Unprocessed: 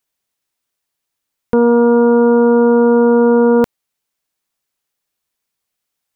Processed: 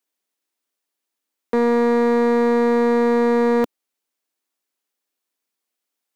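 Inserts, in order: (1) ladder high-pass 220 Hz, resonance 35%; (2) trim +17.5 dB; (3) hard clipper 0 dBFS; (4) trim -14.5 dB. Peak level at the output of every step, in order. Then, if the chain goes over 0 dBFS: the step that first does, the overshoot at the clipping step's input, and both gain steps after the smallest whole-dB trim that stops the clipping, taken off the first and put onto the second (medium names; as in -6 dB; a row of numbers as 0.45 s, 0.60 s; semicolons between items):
-10.5 dBFS, +7.0 dBFS, 0.0 dBFS, -14.5 dBFS; step 2, 7.0 dB; step 2 +10.5 dB, step 4 -7.5 dB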